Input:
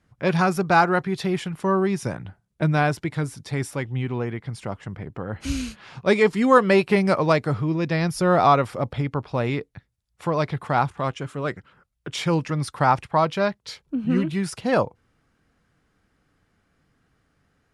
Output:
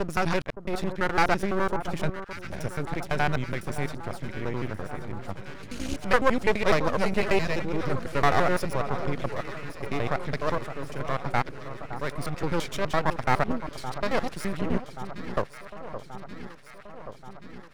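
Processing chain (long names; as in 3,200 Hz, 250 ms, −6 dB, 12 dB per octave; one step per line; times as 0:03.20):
slices reordered back to front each 84 ms, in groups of 8
half-wave rectification
delay that swaps between a low-pass and a high-pass 565 ms, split 1,400 Hz, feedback 80%, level −11 dB
level −1.5 dB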